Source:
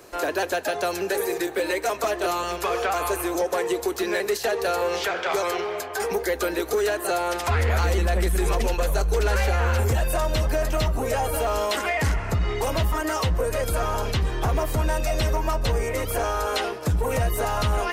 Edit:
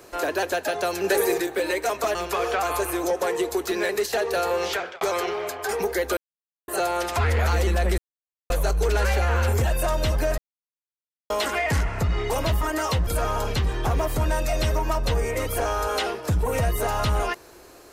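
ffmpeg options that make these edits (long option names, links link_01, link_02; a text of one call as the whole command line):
ffmpeg -i in.wav -filter_complex "[0:a]asplit=12[link_01][link_02][link_03][link_04][link_05][link_06][link_07][link_08][link_09][link_10][link_11][link_12];[link_01]atrim=end=1.042[link_13];[link_02]atrim=start=1.038:end=1.402,asetpts=PTS-STARTPTS,volume=4dB[link_14];[link_03]atrim=start=1.398:end=2.152[link_15];[link_04]atrim=start=2.458:end=5.32,asetpts=PTS-STARTPTS,afade=type=out:start_time=2.582:duration=0.28[link_16];[link_05]atrim=start=5.32:end=6.48,asetpts=PTS-STARTPTS,afade=type=in:duration=0.004:curve=hsin,afade=type=out:start_time=1.156:duration=0.004:curve=hsin[link_17];[link_06]atrim=start=6.48:end=6.99,asetpts=PTS-STARTPTS,volume=0[link_18];[link_07]atrim=start=6.99:end=8.29,asetpts=PTS-STARTPTS,afade=type=in:duration=0.004:curve=hsin,afade=type=out:start_time=1.296:duration=0.004:curve=hsin[link_19];[link_08]atrim=start=8.29:end=8.81,asetpts=PTS-STARTPTS,volume=0[link_20];[link_09]atrim=start=8.81:end=10.69,asetpts=PTS-STARTPTS,afade=type=in:duration=0.004:curve=hsin,afade=type=out:start_time=1.876:duration=0.004:curve=hsin[link_21];[link_10]atrim=start=10.69:end=11.61,asetpts=PTS-STARTPTS,volume=0[link_22];[link_11]atrim=start=11.61:end=13.382,asetpts=PTS-STARTPTS,afade=type=in:duration=0.004:curve=hsin[link_23];[link_12]atrim=start=13.648[link_24];[link_13][link_14]acrossfade=duration=0.004:curve1=hsin:curve2=hsin[link_25];[link_25][link_15]acrossfade=duration=0.004:curve1=hsin:curve2=hsin[link_26];[link_16][link_17][link_18][link_19][link_20][link_21][link_22][link_23]concat=n=8:v=0:a=1[link_27];[link_26][link_27]acrossfade=duration=0.004:curve1=hsin:curve2=hsin[link_28];[link_28][link_24]acrossfade=duration=0.004:curve1=hsin:curve2=hsin" out.wav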